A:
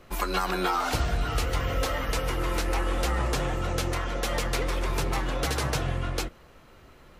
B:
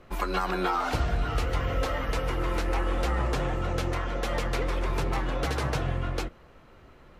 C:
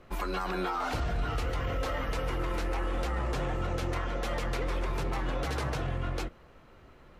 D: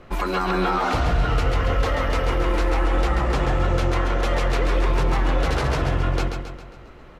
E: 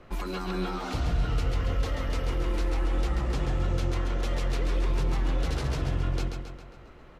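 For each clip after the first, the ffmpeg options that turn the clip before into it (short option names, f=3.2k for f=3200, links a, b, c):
-af "highshelf=f=4.3k:g=-11"
-af "alimiter=limit=-21.5dB:level=0:latency=1:release=16,volume=-2dB"
-filter_complex "[0:a]highshelf=f=9.3k:g=-9.5,asplit=2[a][b];[b]aecho=0:1:135|270|405|540|675|810:0.501|0.251|0.125|0.0626|0.0313|0.0157[c];[a][c]amix=inputs=2:normalize=0,volume=9dB"
-filter_complex "[0:a]acrossover=split=360|3000[a][b][c];[b]acompressor=threshold=-47dB:ratio=1.5[d];[a][d][c]amix=inputs=3:normalize=0,volume=-5.5dB"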